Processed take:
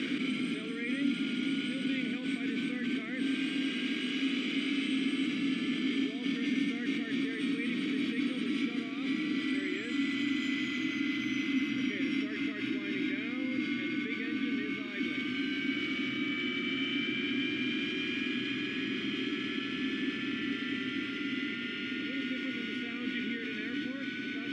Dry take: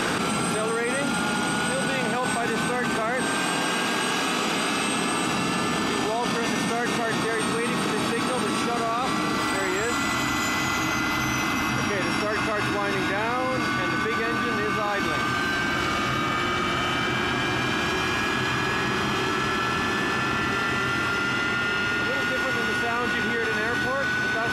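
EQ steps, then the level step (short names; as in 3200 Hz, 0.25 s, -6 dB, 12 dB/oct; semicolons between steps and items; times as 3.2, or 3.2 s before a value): vowel filter i; +3.5 dB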